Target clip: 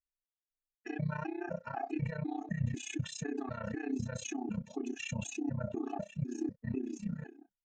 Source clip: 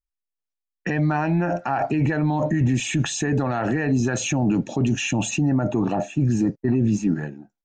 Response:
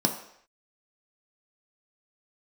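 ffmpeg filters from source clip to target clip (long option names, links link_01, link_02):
-af "tremolo=f=31:d=0.947,afftfilt=real='re*gt(sin(2*PI*2*pts/sr)*(1-2*mod(floor(b*sr/1024/220),2)),0)':imag='im*gt(sin(2*PI*2*pts/sr)*(1-2*mod(floor(b*sr/1024/220),2)),0)':win_size=1024:overlap=0.75,volume=-8.5dB"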